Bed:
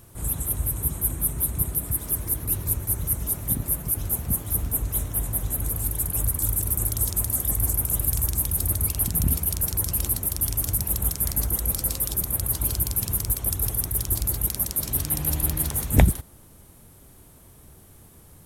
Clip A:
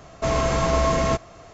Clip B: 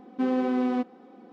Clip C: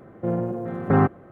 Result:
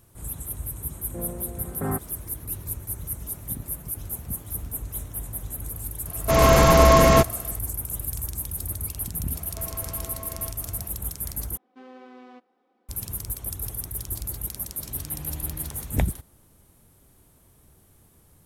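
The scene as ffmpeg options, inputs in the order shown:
-filter_complex "[1:a]asplit=2[s0][s1];[0:a]volume=0.447[s2];[s0]dynaudnorm=f=120:g=5:m=3.76[s3];[s1]acompressor=threshold=0.0178:ratio=6:attack=3.2:release=140:knee=1:detection=peak[s4];[2:a]highpass=f=850:p=1[s5];[s2]asplit=2[s6][s7];[s6]atrim=end=11.574[s8];[s5]atrim=end=1.32,asetpts=PTS-STARTPTS,volume=0.237[s9];[s7]atrim=start=12.886[s10];[3:a]atrim=end=1.31,asetpts=PTS-STARTPTS,volume=0.299,afade=t=in:d=0.004:c=hsin,afade=t=out:st=1.306:d=0.004:c=hsin,adelay=910[s11];[s3]atrim=end=1.53,asetpts=PTS-STARTPTS,volume=0.891,afade=t=in:d=0.004:c=hsin,afade=t=out:st=1.526:d=0.004:c=hsin,adelay=6060[s12];[s4]atrim=end=1.53,asetpts=PTS-STARTPTS,volume=0.668,afade=t=in:d=0.004:c=hsin,afade=t=out:st=1.526:d=0.004:c=hsin,adelay=9350[s13];[s8][s9]acrossfade=d=0.004:c1=hsin:c2=hsin[s14];[s14][s10]acrossfade=d=0.004:c1=hsin:c2=hsin[s15];[s15][s11][s12][s13]amix=inputs=4:normalize=0"

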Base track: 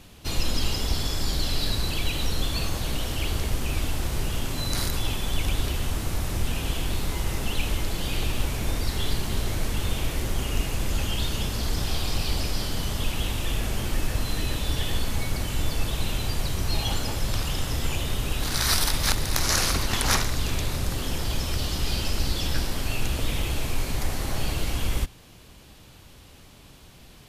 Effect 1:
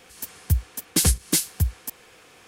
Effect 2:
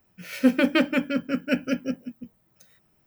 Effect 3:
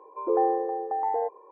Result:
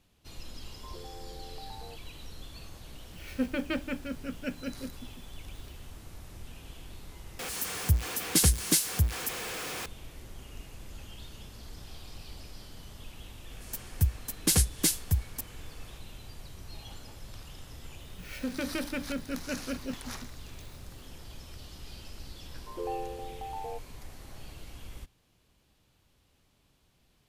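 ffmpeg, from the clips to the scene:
-filter_complex "[3:a]asplit=2[s0][s1];[2:a]asplit=2[s2][s3];[1:a]asplit=2[s4][s5];[0:a]volume=0.112[s6];[s0]acompressor=threshold=0.0251:ratio=6:attack=3.2:release=140:knee=1:detection=peak[s7];[s4]aeval=exprs='val(0)+0.5*0.0422*sgn(val(0))':c=same[s8];[s3]acompressor=threshold=0.0891:ratio=6:attack=3.2:release=140:knee=1:detection=peak[s9];[s6]asplit=2[s10][s11];[s10]atrim=end=7.394[s12];[s8]atrim=end=2.47,asetpts=PTS-STARTPTS,volume=0.596[s13];[s11]atrim=start=9.856[s14];[s7]atrim=end=1.51,asetpts=PTS-STARTPTS,volume=0.224,afade=t=in:d=0.004:c=hsin,afade=t=out:st=1.506:d=0.004:c=hsin,adelay=670[s15];[s2]atrim=end=3.06,asetpts=PTS-STARTPTS,volume=0.266,afade=t=in:d=0.004:c=hsin,afade=t=out:st=3.056:d=0.004:c=hsin,adelay=2950[s16];[s5]atrim=end=2.47,asetpts=PTS-STARTPTS,volume=0.596,afade=t=in:d=0.004:c=hsin,afade=t=out:st=2.466:d=0.004:c=hsin,adelay=13510[s17];[s9]atrim=end=3.06,asetpts=PTS-STARTPTS,volume=0.422,afade=t=in:d=0.004:c=hsin,afade=t=out:st=3.056:d=0.004:c=hsin,adelay=18000[s18];[s1]atrim=end=1.51,asetpts=PTS-STARTPTS,volume=0.251,afade=t=in:d=0.004:c=hsin,afade=t=out:st=1.506:d=0.004:c=hsin,adelay=22500[s19];[s12][s13]acrossfade=d=0.004:c1=hsin:c2=hsin[s20];[s20][s14]acrossfade=d=0.004:c1=hsin:c2=hsin[s21];[s21][s15][s16][s17][s18][s19]amix=inputs=6:normalize=0"

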